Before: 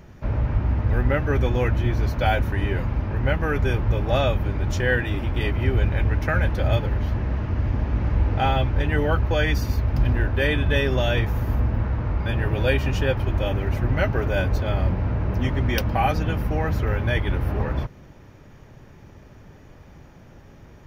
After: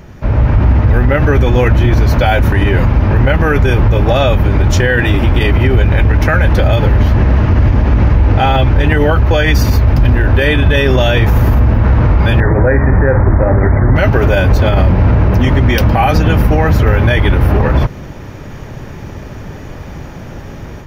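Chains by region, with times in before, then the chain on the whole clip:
12.4–13.96 steep low-pass 2100 Hz 96 dB/oct + flutter echo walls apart 8.6 m, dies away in 0.23 s
whole clip: AGC gain up to 8.5 dB; maximiser +11.5 dB; gain -1 dB

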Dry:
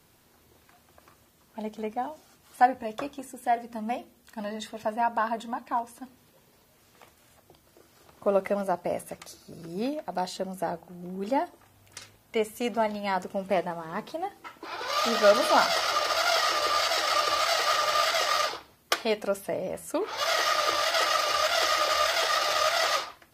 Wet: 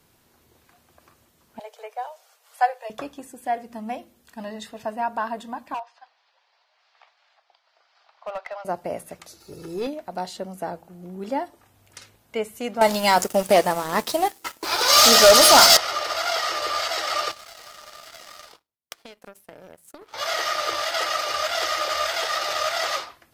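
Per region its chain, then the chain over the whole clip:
1.59–2.9 steep high-pass 460 Hz 72 dB/oct + dynamic EQ 4200 Hz, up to +3 dB, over -42 dBFS, Q 0.71
5.74–8.65 elliptic band-pass 710–4800 Hz, stop band 50 dB + hard clip -25.5 dBFS
9.4–9.87 sample leveller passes 1 + comb 2.3 ms, depth 63%
12.81–15.77 tone controls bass -5 dB, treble +14 dB + sample leveller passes 3
17.31–20.14 high shelf 7000 Hz +9 dB + compressor 16:1, threshold -27 dBFS + power-law curve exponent 2
whole clip: dry

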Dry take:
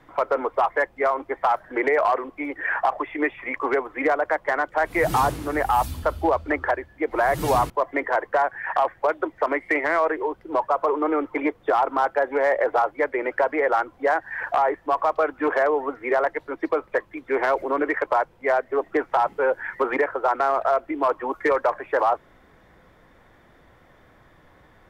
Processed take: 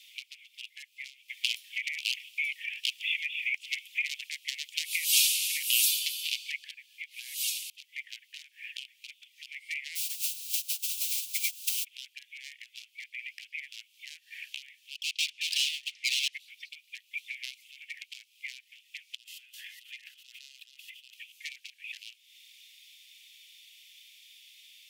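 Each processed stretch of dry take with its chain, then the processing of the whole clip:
1.28–6.64 inverse Chebyshev high-pass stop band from 720 Hz, stop band 50 dB + three-band squash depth 40%
9.95–11.83 added noise white -34 dBFS + upward expander 2.5:1, over -33 dBFS
14.95–16.33 LPF 6100 Hz + low shelf 480 Hz -6 dB + hard clip -28 dBFS
19.15–21.14 notch 2300 Hz, Q 5.2 + negative-ratio compressor -32 dBFS
whole clip: compressor 6:1, threshold -31 dBFS; steep high-pass 2500 Hz 72 dB/oct; gain +16.5 dB

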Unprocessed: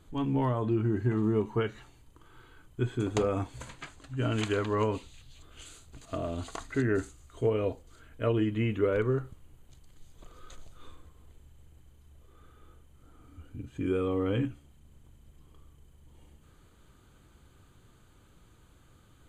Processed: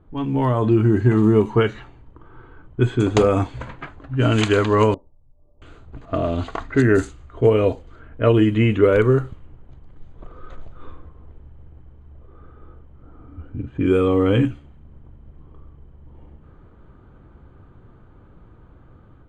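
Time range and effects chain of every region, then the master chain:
4.94–5.62 steep low-pass 980 Hz 72 dB/oct + dynamic EQ 610 Hz, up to +5 dB, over -54 dBFS, Q 0.77 + resonator 590 Hz, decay 0.26 s, mix 90%
whole clip: low-pass opened by the level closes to 1100 Hz, open at -23 dBFS; AGC gain up to 7 dB; gain +5 dB

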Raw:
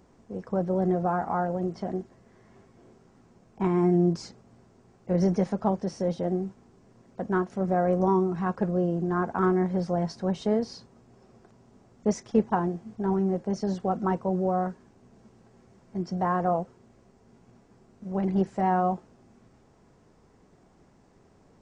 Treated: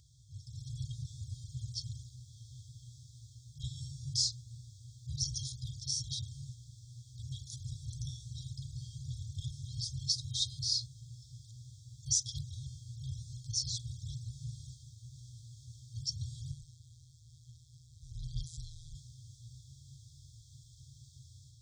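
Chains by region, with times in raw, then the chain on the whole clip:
16.51–18.95 HPF 51 Hz + AM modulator 160 Hz, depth 85%
whole clip: AGC gain up to 7.5 dB; FFT band-reject 150–3200 Hz; HPF 87 Hz; gain +6 dB

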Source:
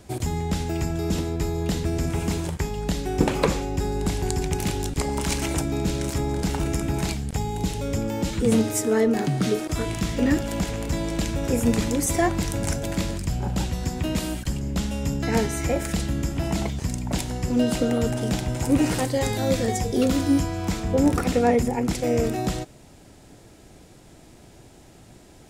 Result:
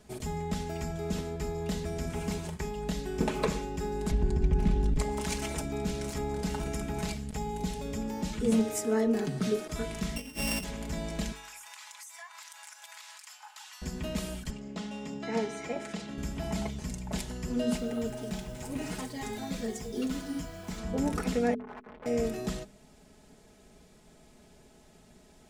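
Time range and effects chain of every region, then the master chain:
4.11–4.99 RIAA curve playback + compressor 4:1, threshold -12 dBFS
10.16–10.64 sample sorter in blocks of 16 samples + high shelf 3900 Hz +10.5 dB + negative-ratio compressor -26 dBFS, ratio -0.5
11.32–13.82 steep high-pass 860 Hz 48 dB/oct + compressor 16:1, threshold -35 dBFS
14.5–16.18 HPF 230 Hz + air absorption 81 m + notch 1600 Hz, Q 13
17.77–20.78 flange 1.6 Hz, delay 4.4 ms, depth 5 ms, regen -37% + notch 540 Hz + requantised 8-bit, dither none
21.54–22.06 LPF 2100 Hz 24 dB/oct + overloaded stage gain 27 dB + core saturation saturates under 720 Hz
whole clip: high shelf 12000 Hz -3.5 dB; comb 4.7 ms, depth 68%; de-hum 49.18 Hz, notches 9; gain -9 dB

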